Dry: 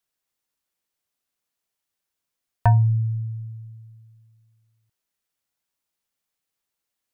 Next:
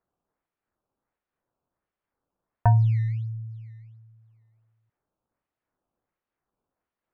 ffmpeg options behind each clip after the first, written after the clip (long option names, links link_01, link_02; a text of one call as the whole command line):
ffmpeg -i in.wav -af "acrusher=samples=13:mix=1:aa=0.000001:lfo=1:lforange=20.8:lforate=1.4,lowpass=1600,volume=-2dB" out.wav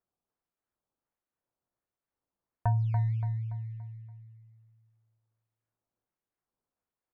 ffmpeg -i in.wav -af "aecho=1:1:286|572|858|1144|1430:0.447|0.183|0.0751|0.0308|0.0126,volume=-8.5dB" out.wav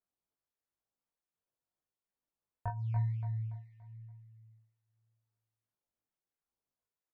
ffmpeg -i in.wav -filter_complex "[0:a]flanger=delay=15.5:depth=6.7:speed=0.94,asplit=2[link_01][link_02];[link_02]adelay=20,volume=-5dB[link_03];[link_01][link_03]amix=inputs=2:normalize=0,volume=-4.5dB" out.wav